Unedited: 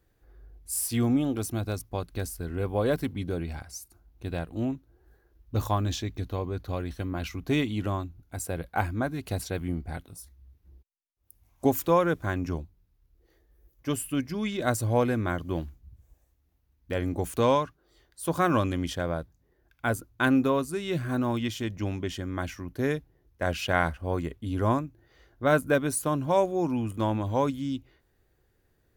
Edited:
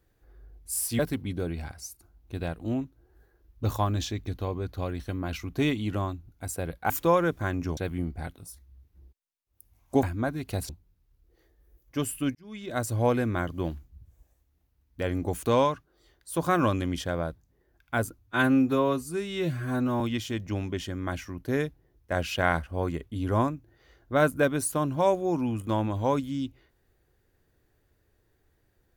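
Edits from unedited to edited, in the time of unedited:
0.99–2.90 s: delete
8.81–9.47 s: swap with 11.73–12.60 s
14.26–14.92 s: fade in
20.10–21.31 s: stretch 1.5×

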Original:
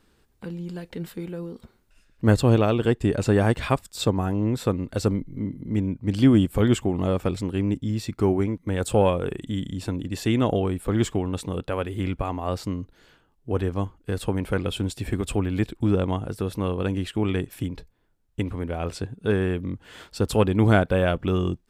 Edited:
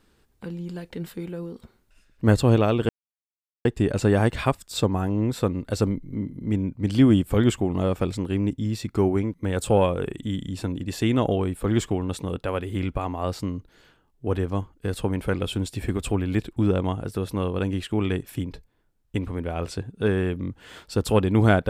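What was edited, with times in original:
2.89 s: insert silence 0.76 s

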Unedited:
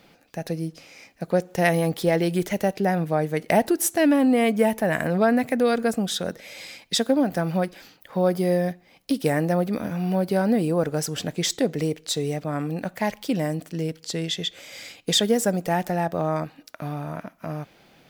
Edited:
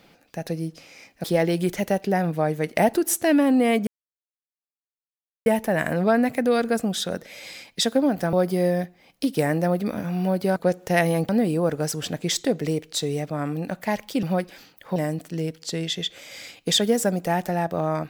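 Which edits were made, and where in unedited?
1.24–1.97 s: move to 10.43 s
4.60 s: insert silence 1.59 s
7.47–8.20 s: move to 13.37 s

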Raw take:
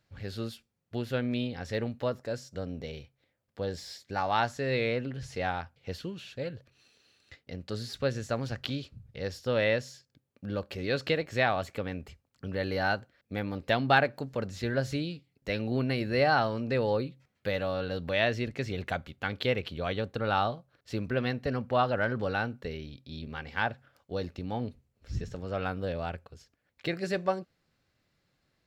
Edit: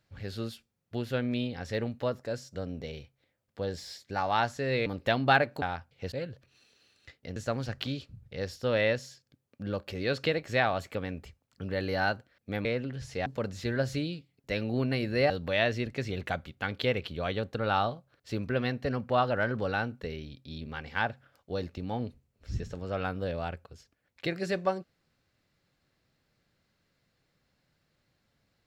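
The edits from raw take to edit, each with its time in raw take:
4.86–5.47 s: swap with 13.48–14.24 s
5.97–6.36 s: delete
7.60–8.19 s: delete
16.28–17.91 s: delete

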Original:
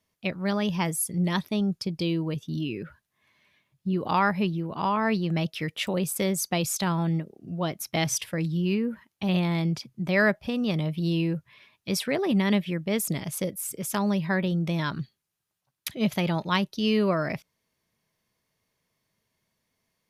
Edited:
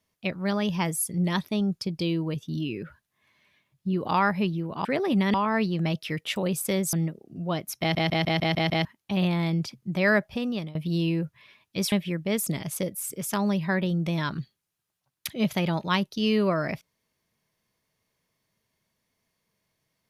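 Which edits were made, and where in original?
6.44–7.05 s: delete
7.92 s: stutter in place 0.15 s, 7 plays
10.42–10.87 s: fade out equal-power, to -21.5 dB
12.04–12.53 s: move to 4.85 s

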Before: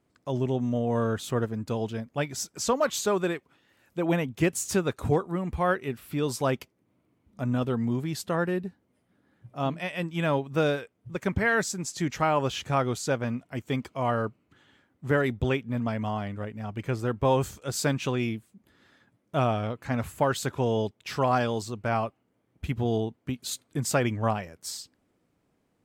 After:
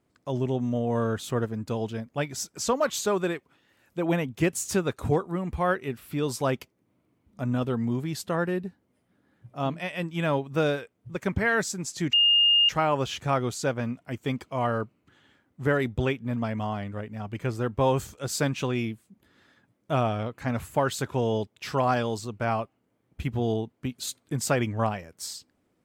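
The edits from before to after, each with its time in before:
12.13 s: add tone 2.83 kHz -16.5 dBFS 0.56 s

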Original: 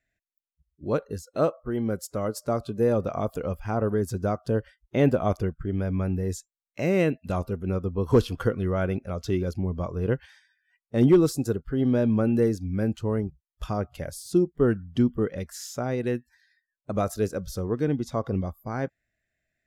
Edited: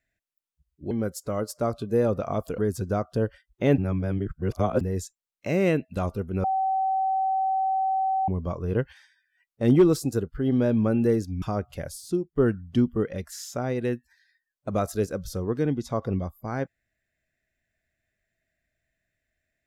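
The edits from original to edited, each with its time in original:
0.91–1.78 s: delete
3.45–3.91 s: delete
5.11–6.14 s: reverse
7.77–9.61 s: bleep 766 Hz -21.5 dBFS
12.75–13.64 s: delete
14.17–14.58 s: fade out linear, to -17 dB

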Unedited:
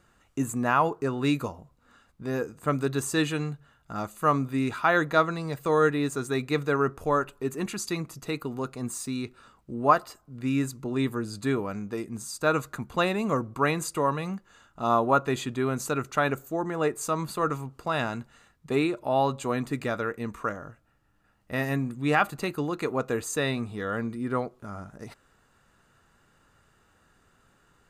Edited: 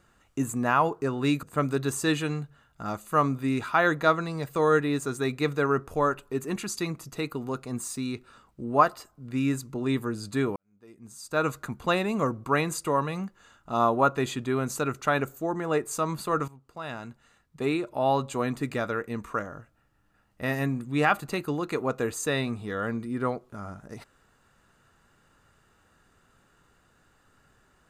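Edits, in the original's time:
1.43–2.53 s: delete
11.66–12.59 s: fade in quadratic
17.58–19.22 s: fade in, from -16 dB

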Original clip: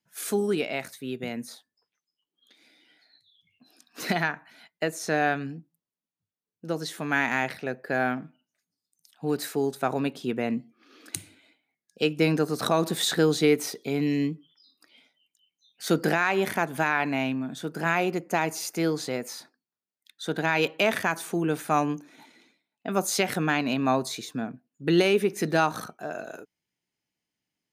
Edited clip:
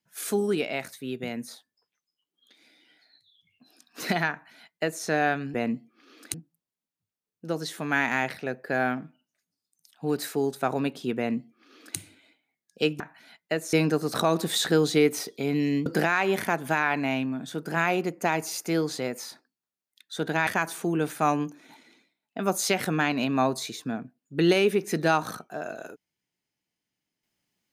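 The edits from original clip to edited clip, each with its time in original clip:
4.31–5.04 s: copy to 12.20 s
10.37–11.17 s: copy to 5.54 s
14.33–15.95 s: delete
20.56–20.96 s: delete

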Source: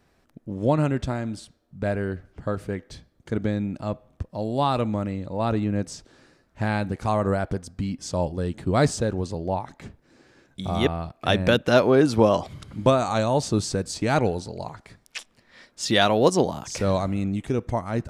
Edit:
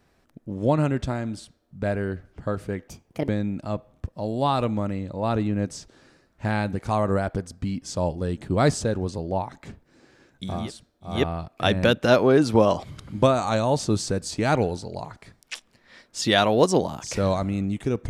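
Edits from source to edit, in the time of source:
1.27–1.80 s: copy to 10.76 s, crossfade 0.24 s
2.88–3.45 s: speed 141%

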